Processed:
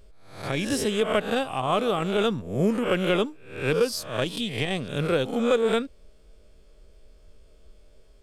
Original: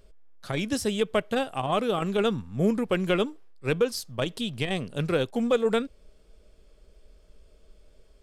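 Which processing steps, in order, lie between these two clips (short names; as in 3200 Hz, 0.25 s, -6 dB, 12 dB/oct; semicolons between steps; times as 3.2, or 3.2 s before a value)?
spectral swells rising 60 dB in 0.53 s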